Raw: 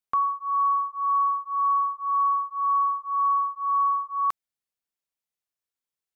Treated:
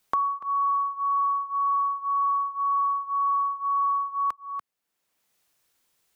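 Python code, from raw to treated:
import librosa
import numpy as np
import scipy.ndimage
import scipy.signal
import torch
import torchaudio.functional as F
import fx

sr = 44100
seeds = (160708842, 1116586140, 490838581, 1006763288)

p1 = x + fx.echo_single(x, sr, ms=290, db=-13.5, dry=0)
p2 = fx.band_squash(p1, sr, depth_pct=70)
y = F.gain(torch.from_numpy(p2), -1.5).numpy()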